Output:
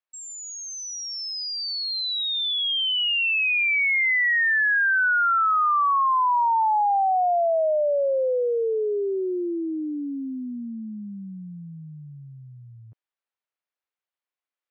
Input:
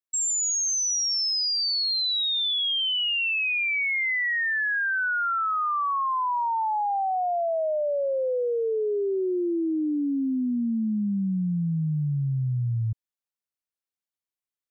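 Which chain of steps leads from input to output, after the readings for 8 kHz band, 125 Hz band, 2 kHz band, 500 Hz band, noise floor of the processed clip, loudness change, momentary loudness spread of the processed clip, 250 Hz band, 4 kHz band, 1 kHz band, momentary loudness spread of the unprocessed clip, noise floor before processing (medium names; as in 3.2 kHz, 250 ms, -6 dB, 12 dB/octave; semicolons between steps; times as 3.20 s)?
no reading, under -10 dB, +4.5 dB, +2.5 dB, under -85 dBFS, +2.5 dB, 16 LU, -5.0 dB, -0.5 dB, +5.0 dB, 4 LU, under -85 dBFS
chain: band-pass 480–2800 Hz; trim +5.5 dB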